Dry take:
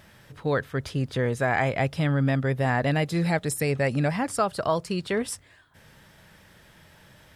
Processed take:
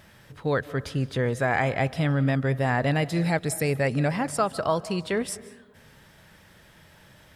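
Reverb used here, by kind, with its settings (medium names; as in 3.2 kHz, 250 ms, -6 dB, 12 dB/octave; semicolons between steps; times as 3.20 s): algorithmic reverb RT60 1.1 s, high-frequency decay 0.35×, pre-delay 120 ms, DRR 17 dB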